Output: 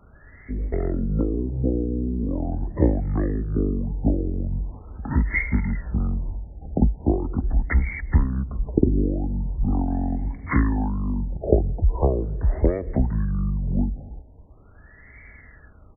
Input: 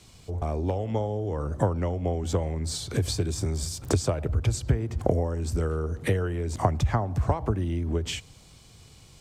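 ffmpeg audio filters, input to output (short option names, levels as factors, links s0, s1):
-af "asetrate=25442,aresample=44100,aexciter=amount=8.2:drive=4.2:freq=2000,afftfilt=real='re*lt(b*sr/1024,850*pow(2300/850,0.5+0.5*sin(2*PI*0.41*pts/sr)))':imag='im*lt(b*sr/1024,850*pow(2300/850,0.5+0.5*sin(2*PI*0.41*pts/sr)))':win_size=1024:overlap=0.75,volume=1.68"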